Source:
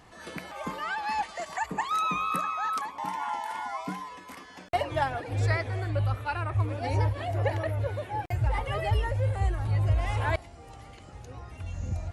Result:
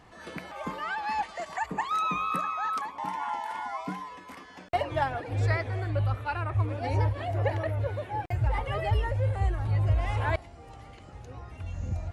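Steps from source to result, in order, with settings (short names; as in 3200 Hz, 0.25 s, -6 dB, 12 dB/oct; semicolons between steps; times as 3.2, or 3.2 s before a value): high shelf 5200 Hz -7.5 dB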